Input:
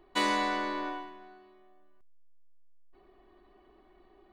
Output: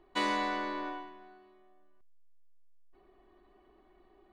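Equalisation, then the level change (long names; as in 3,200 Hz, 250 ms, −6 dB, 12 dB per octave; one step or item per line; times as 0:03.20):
high-shelf EQ 8,100 Hz −10.5 dB
−2.5 dB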